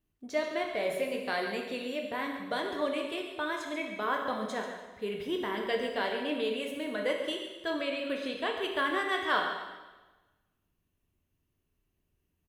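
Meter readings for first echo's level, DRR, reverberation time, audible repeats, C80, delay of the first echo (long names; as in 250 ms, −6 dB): −11.0 dB, 1.0 dB, 1.2 s, 1, 5.5 dB, 140 ms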